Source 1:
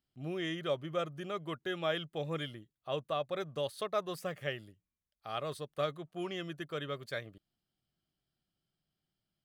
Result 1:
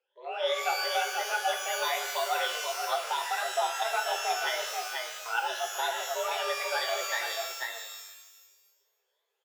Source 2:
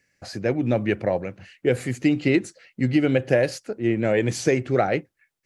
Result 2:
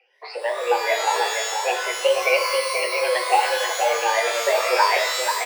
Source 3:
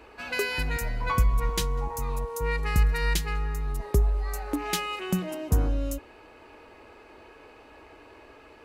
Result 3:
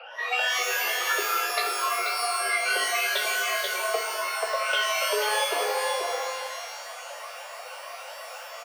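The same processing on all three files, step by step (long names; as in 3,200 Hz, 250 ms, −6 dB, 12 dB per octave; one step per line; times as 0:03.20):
rippled gain that drifts along the octave scale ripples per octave 0.94, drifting +3 Hz, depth 21 dB
on a send: single-tap delay 484 ms −6.5 dB
on the sum: single-sideband voice off tune +240 Hz 210–3,600 Hz
dynamic equaliser 710 Hz, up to −6 dB, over −30 dBFS, Q 2.1
in parallel at +2 dB: downward compressor, threshold −33 dBFS
on the sum: flanger 1.7 Hz, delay 7.3 ms, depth 7.2 ms, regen +31%
reverb with rising layers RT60 1.1 s, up +12 semitones, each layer −2 dB, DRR 5.5 dB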